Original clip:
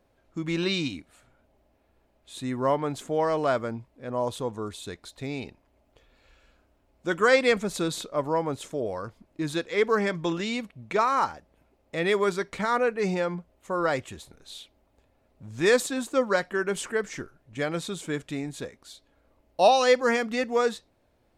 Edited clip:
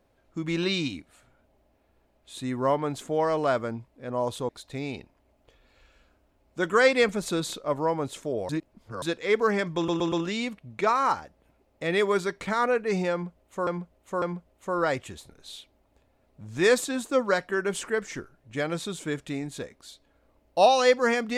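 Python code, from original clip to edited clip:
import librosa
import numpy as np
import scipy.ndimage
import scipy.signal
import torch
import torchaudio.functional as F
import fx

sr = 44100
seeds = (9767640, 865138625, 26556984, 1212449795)

y = fx.edit(x, sr, fx.cut(start_s=4.49, length_s=0.48),
    fx.reverse_span(start_s=8.97, length_s=0.53),
    fx.stutter(start_s=10.24, slice_s=0.12, count=4),
    fx.repeat(start_s=13.24, length_s=0.55, count=3), tone=tone)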